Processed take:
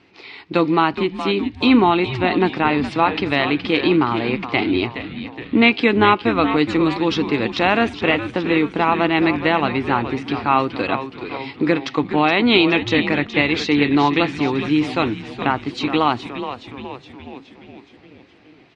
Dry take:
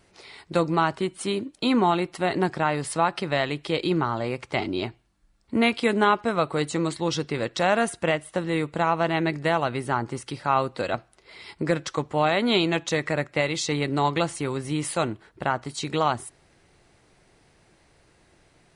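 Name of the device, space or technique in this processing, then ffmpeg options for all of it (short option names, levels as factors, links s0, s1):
frequency-shifting delay pedal into a guitar cabinet: -filter_complex "[0:a]asplit=8[s0][s1][s2][s3][s4][s5][s6][s7];[s1]adelay=419,afreqshift=-130,volume=0.316[s8];[s2]adelay=838,afreqshift=-260,volume=0.184[s9];[s3]adelay=1257,afreqshift=-390,volume=0.106[s10];[s4]adelay=1676,afreqshift=-520,volume=0.0617[s11];[s5]adelay=2095,afreqshift=-650,volume=0.0359[s12];[s6]adelay=2514,afreqshift=-780,volume=0.0207[s13];[s7]adelay=2933,afreqshift=-910,volume=0.012[s14];[s0][s8][s9][s10][s11][s12][s13][s14]amix=inputs=8:normalize=0,highpass=110,equalizer=f=160:t=q:w=4:g=-5,equalizer=f=290:t=q:w=4:g=7,equalizer=f=590:t=q:w=4:g=-8,equalizer=f=1500:t=q:w=4:g=-3,equalizer=f=2500:t=q:w=4:g=6,lowpass=f=4400:w=0.5412,lowpass=f=4400:w=1.3066,volume=2.11"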